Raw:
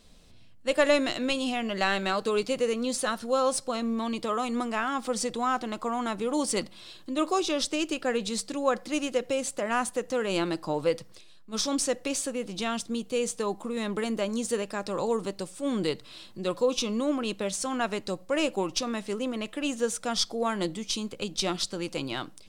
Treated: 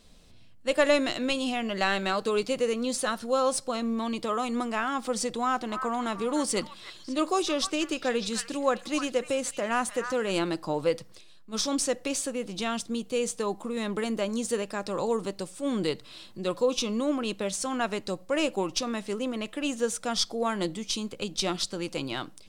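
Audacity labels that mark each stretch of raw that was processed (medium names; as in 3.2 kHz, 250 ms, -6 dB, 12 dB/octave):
5.340000	10.390000	repeats whose band climbs or falls 301 ms, band-pass from 1.5 kHz, each repeat 1.4 oct, level -6 dB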